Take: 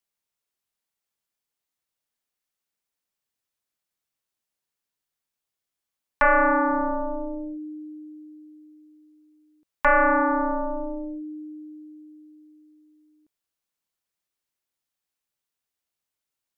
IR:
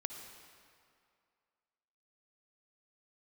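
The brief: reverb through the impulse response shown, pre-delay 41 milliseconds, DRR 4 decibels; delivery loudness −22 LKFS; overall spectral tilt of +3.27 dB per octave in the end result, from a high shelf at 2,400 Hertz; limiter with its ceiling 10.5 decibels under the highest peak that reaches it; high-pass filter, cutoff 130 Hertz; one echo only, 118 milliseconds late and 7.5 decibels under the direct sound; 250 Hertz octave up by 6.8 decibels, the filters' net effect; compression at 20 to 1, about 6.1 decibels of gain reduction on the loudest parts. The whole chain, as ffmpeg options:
-filter_complex "[0:a]highpass=130,equalizer=frequency=250:width_type=o:gain=8.5,highshelf=frequency=2400:gain=-7,acompressor=threshold=-21dB:ratio=20,alimiter=limit=-23dB:level=0:latency=1,aecho=1:1:118:0.422,asplit=2[link_01][link_02];[1:a]atrim=start_sample=2205,adelay=41[link_03];[link_02][link_03]afir=irnorm=-1:irlink=0,volume=-3dB[link_04];[link_01][link_04]amix=inputs=2:normalize=0,volume=8dB"

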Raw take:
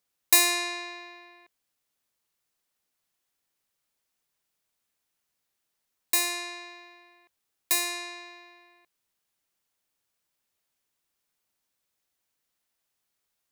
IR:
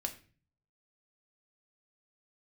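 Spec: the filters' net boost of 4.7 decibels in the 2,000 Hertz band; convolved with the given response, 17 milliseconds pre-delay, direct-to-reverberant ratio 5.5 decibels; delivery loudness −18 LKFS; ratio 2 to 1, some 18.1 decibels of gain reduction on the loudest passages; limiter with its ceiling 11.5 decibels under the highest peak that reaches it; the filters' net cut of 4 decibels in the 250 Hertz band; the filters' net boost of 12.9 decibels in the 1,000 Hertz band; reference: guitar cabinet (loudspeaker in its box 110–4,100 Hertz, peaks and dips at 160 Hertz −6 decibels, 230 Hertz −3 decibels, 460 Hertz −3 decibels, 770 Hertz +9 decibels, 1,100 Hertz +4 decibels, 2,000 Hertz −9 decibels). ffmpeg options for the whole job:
-filter_complex "[0:a]equalizer=frequency=250:width_type=o:gain=-8,equalizer=frequency=1000:width_type=o:gain=8,equalizer=frequency=2000:width_type=o:gain=8.5,acompressor=threshold=-46dB:ratio=2,alimiter=level_in=4.5dB:limit=-24dB:level=0:latency=1,volume=-4.5dB,asplit=2[link_01][link_02];[1:a]atrim=start_sample=2205,adelay=17[link_03];[link_02][link_03]afir=irnorm=-1:irlink=0,volume=-5.5dB[link_04];[link_01][link_04]amix=inputs=2:normalize=0,highpass=110,equalizer=frequency=160:width_type=q:width=4:gain=-6,equalizer=frequency=230:width_type=q:width=4:gain=-3,equalizer=frequency=460:width_type=q:width=4:gain=-3,equalizer=frequency=770:width_type=q:width=4:gain=9,equalizer=frequency=1100:width_type=q:width=4:gain=4,equalizer=frequency=2000:width_type=q:width=4:gain=-9,lowpass=frequency=4100:width=0.5412,lowpass=frequency=4100:width=1.3066,volume=23dB"

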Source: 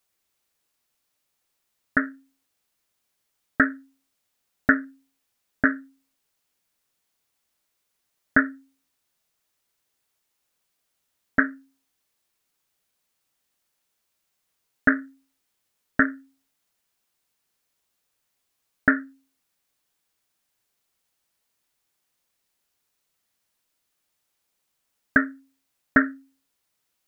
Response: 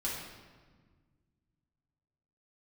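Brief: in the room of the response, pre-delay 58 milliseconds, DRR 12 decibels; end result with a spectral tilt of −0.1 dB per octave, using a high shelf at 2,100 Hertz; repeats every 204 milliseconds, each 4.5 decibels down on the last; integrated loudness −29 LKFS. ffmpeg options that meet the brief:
-filter_complex "[0:a]highshelf=frequency=2100:gain=-4.5,aecho=1:1:204|408|612|816|1020|1224|1428|1632|1836:0.596|0.357|0.214|0.129|0.0772|0.0463|0.0278|0.0167|0.01,asplit=2[link_01][link_02];[1:a]atrim=start_sample=2205,adelay=58[link_03];[link_02][link_03]afir=irnorm=-1:irlink=0,volume=-16dB[link_04];[link_01][link_04]amix=inputs=2:normalize=0,volume=-2dB"

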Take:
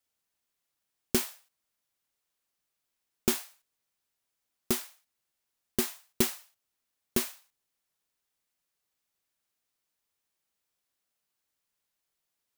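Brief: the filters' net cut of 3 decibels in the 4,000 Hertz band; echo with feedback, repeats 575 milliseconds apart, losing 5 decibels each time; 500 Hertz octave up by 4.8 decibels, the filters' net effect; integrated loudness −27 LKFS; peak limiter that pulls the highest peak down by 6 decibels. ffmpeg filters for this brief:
ffmpeg -i in.wav -af "equalizer=frequency=500:width_type=o:gain=7.5,equalizer=frequency=4000:width_type=o:gain=-4,alimiter=limit=-14dB:level=0:latency=1,aecho=1:1:575|1150|1725|2300|2875|3450|4025:0.562|0.315|0.176|0.0988|0.0553|0.031|0.0173,volume=9.5dB" out.wav

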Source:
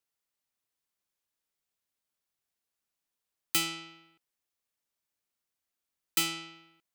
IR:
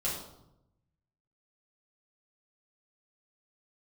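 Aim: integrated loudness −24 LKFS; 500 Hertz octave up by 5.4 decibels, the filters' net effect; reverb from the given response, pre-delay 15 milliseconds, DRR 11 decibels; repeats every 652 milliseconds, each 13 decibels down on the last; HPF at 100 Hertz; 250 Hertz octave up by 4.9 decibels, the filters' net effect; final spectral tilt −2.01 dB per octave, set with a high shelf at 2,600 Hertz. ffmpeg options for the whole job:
-filter_complex "[0:a]highpass=100,equalizer=frequency=250:width_type=o:gain=3.5,equalizer=frequency=500:width_type=o:gain=7.5,highshelf=frequency=2600:gain=-4,aecho=1:1:652|1304|1956:0.224|0.0493|0.0108,asplit=2[link_01][link_02];[1:a]atrim=start_sample=2205,adelay=15[link_03];[link_02][link_03]afir=irnorm=-1:irlink=0,volume=-16.5dB[link_04];[link_01][link_04]amix=inputs=2:normalize=0,volume=11dB"

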